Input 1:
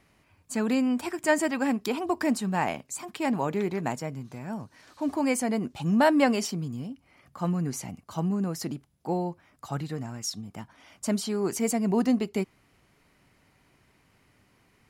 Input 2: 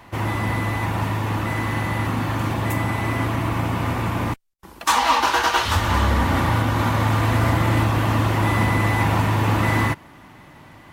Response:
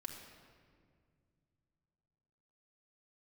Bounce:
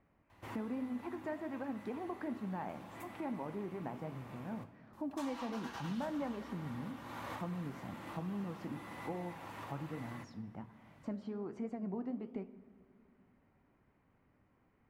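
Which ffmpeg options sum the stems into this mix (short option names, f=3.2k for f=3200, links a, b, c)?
-filter_complex "[0:a]lowpass=1.4k,acompressor=threshold=-31dB:ratio=6,volume=-5dB,asplit=3[a][b][c];[b]volume=-5dB[d];[1:a]acrossover=split=260[e][f];[e]acompressor=threshold=-34dB:ratio=6[g];[g][f]amix=inputs=2:normalize=0,adelay=300,volume=-15.5dB,asplit=2[h][i];[i]volume=-12dB[j];[c]apad=whole_len=495019[k];[h][k]sidechaincompress=threshold=-52dB:ratio=8:attack=37:release=475[l];[2:a]atrim=start_sample=2205[m];[d][j]amix=inputs=2:normalize=0[n];[n][m]afir=irnorm=-1:irlink=0[o];[a][l][o]amix=inputs=3:normalize=0,flanger=delay=8.8:depth=9.4:regen=-74:speed=1.2:shape=triangular"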